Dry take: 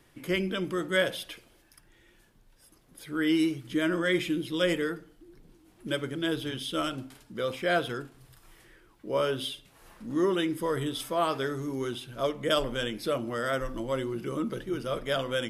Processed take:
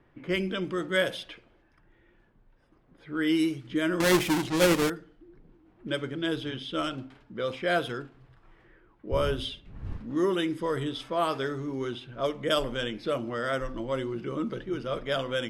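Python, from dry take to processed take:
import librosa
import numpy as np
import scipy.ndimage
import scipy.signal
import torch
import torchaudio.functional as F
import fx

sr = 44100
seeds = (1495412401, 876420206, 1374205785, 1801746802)

y = fx.halfwave_hold(x, sr, at=(4.0, 4.9))
y = fx.dmg_wind(y, sr, seeds[0], corner_hz=97.0, level_db=-29.0, at=(9.11, 10.12), fade=0.02)
y = fx.env_lowpass(y, sr, base_hz=1700.0, full_db=-22.0)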